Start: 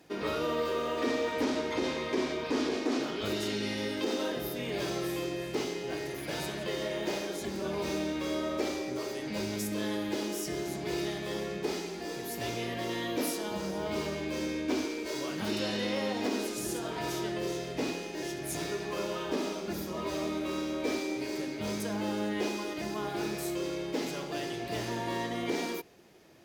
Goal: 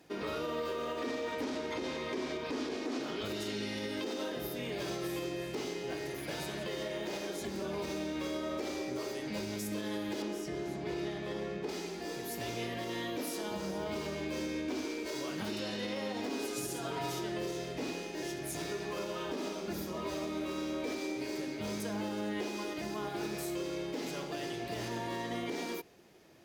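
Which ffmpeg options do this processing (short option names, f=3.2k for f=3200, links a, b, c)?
-filter_complex "[0:a]asettb=1/sr,asplit=3[a][b][c];[a]atrim=end=10.224[d];[b]atrim=start=10.22:end=11.69,asetpts=PTS-STARTPTS,afade=t=in:d=0.004:c=qsin,afade=t=out:st=1.466:d=0.004:c=qsin,lowpass=f=2.6k:p=1[e];[c]atrim=start=11.686[f];[d][e]acrossfade=d=0.004:c1=hsin:c2=qsin[g];[g][f]acrossfade=d=0.004:c1=qsin:c2=hsin,alimiter=level_in=2dB:limit=-24dB:level=0:latency=1:release=99,volume=-2dB,asettb=1/sr,asplit=3[h][i][j];[h]atrim=end=16.294[k];[i]atrim=start=16.29:end=17.19,asetpts=PTS-STARTPTS,afade=t=in:d=0.004:c=qsin,afade=t=out:st=0.896:d=0.004:c=qsin,aecho=1:1:7.2:0.54,atrim=end_sample=39690[l];[j]atrim=start=17.186[m];[k][l]acrossfade=d=0.004:c1=hsin:c2=qsin[n];[n][m]acrossfade=d=0.004:c1=qsin:c2=hsin,volume=-2dB"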